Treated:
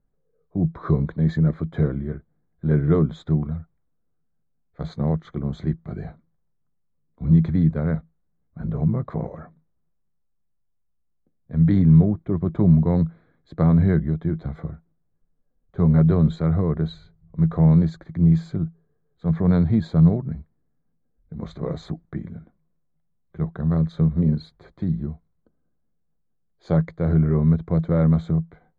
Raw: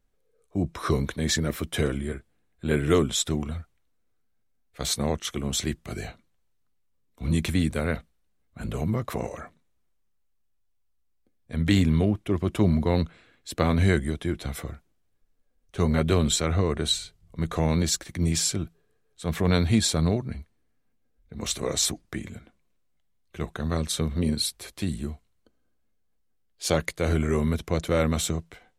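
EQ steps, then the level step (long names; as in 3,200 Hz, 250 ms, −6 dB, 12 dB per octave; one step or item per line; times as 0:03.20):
moving average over 16 samples
high-frequency loss of the air 160 metres
parametric band 160 Hz +13 dB 0.39 octaves
0.0 dB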